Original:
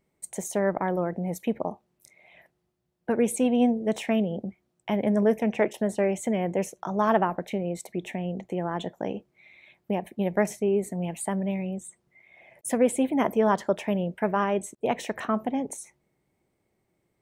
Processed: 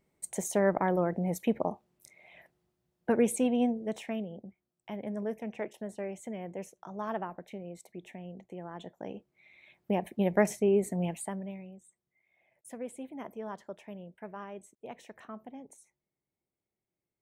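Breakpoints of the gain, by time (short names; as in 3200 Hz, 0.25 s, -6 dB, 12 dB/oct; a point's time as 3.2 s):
3.1 s -1 dB
4.38 s -13 dB
8.73 s -13 dB
10.01 s -1 dB
11.06 s -1 dB
11.26 s -7.5 dB
11.79 s -18 dB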